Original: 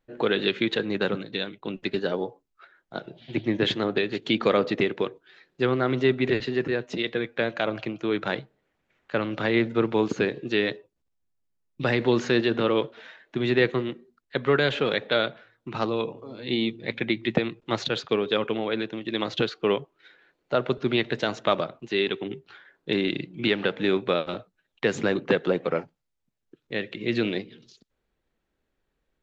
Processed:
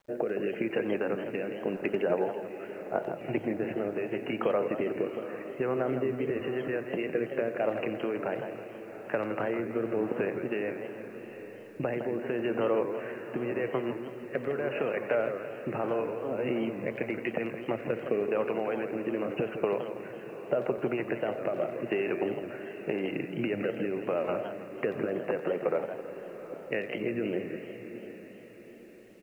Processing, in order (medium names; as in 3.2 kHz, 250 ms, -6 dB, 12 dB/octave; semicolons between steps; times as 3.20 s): peak limiter -16 dBFS, peak gain reduction 8 dB; brick-wall FIR low-pass 2.9 kHz; compression 8:1, threshold -35 dBFS, peak gain reduction 14 dB; peaking EQ 640 Hz +10 dB 1.3 oct; speakerphone echo 90 ms, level -14 dB; rotary cabinet horn 0.85 Hz; echo that smears into a reverb 779 ms, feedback 45%, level -12 dB; word length cut 12-bit, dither none; bass shelf 67 Hz -6.5 dB; modulated delay 164 ms, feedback 48%, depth 217 cents, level -9 dB; trim +5 dB